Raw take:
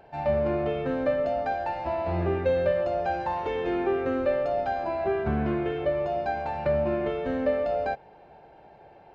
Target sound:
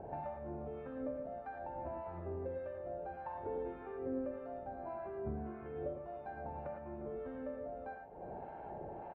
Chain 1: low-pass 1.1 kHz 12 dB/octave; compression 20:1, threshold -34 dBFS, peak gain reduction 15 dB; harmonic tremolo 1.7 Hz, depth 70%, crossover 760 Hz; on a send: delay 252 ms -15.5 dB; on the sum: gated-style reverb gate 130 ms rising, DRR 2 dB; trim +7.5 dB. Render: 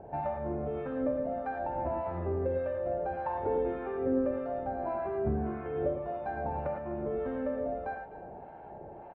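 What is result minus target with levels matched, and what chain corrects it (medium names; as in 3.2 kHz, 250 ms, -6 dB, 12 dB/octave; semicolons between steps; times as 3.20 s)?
compression: peak gain reduction -10 dB; echo 102 ms early
low-pass 1.1 kHz 12 dB/octave; compression 20:1, threshold -44.5 dBFS, peak gain reduction 25 dB; harmonic tremolo 1.7 Hz, depth 70%, crossover 760 Hz; on a send: delay 354 ms -15.5 dB; on the sum: gated-style reverb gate 130 ms rising, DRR 2 dB; trim +7.5 dB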